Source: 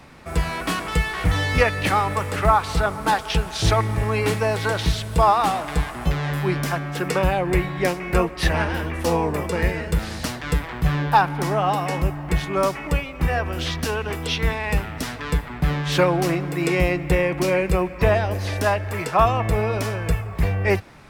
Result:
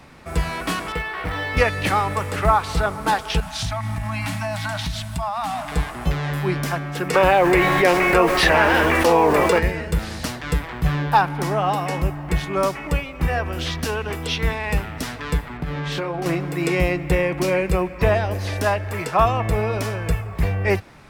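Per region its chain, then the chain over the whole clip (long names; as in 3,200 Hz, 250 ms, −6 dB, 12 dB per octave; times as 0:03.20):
0:00.92–0:01.57: floating-point word with a short mantissa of 2 bits + bass and treble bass −10 dB, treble −15 dB + notch filter 6,700 Hz, Q 8
0:03.40–0:05.72: Chebyshev band-stop filter 290–610 Hz, order 5 + downward compressor 10 to 1, threshold −21 dBFS
0:07.13–0:09.58: bass and treble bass −14 dB, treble −7 dB + background noise pink −50 dBFS + envelope flattener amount 70%
0:15.57–0:16.26: high-shelf EQ 5,300 Hz −9 dB + double-tracking delay 25 ms −6 dB + downward compressor, threshold −22 dBFS
whole clip: no processing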